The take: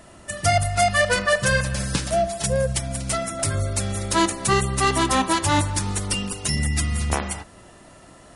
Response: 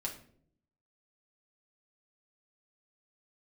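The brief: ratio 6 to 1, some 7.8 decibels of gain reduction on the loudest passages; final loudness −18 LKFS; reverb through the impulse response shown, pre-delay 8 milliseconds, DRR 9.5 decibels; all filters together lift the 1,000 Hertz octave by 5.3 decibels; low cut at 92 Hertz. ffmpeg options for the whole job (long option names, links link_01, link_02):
-filter_complex "[0:a]highpass=92,equalizer=frequency=1000:width_type=o:gain=7,acompressor=threshold=-20dB:ratio=6,asplit=2[link_01][link_02];[1:a]atrim=start_sample=2205,adelay=8[link_03];[link_02][link_03]afir=irnorm=-1:irlink=0,volume=-10.5dB[link_04];[link_01][link_04]amix=inputs=2:normalize=0,volume=6.5dB"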